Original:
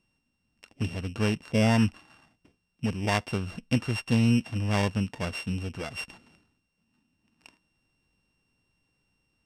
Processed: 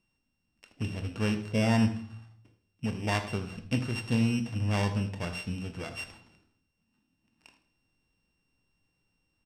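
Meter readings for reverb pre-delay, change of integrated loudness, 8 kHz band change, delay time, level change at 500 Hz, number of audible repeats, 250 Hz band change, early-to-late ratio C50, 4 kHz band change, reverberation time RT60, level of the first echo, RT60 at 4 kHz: 15 ms, -3.0 dB, -3.0 dB, 80 ms, -3.5 dB, 2, -2.5 dB, 10.0 dB, -3.0 dB, 0.55 s, -14.5 dB, 0.55 s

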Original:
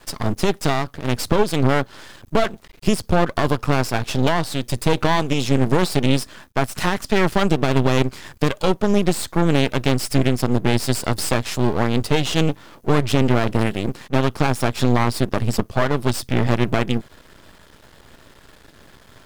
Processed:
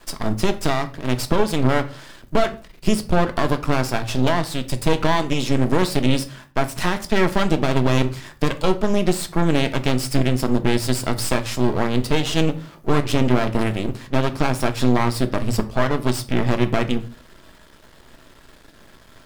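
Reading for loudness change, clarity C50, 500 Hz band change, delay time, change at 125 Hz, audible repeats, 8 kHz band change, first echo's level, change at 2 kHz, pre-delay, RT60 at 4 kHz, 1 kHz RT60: -1.0 dB, 16.0 dB, -1.0 dB, no echo, -2.0 dB, no echo, -1.0 dB, no echo, -1.0 dB, 3 ms, 0.30 s, 0.40 s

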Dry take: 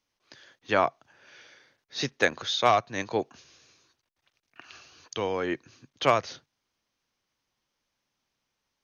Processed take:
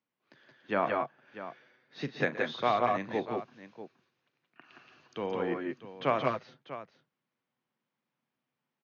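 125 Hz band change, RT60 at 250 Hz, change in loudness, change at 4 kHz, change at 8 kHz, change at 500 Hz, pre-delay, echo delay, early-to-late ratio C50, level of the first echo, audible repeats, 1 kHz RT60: -2.5 dB, no reverb, -4.5 dB, -11.5 dB, no reading, -3.0 dB, no reverb, 40 ms, no reverb, -15.0 dB, 4, no reverb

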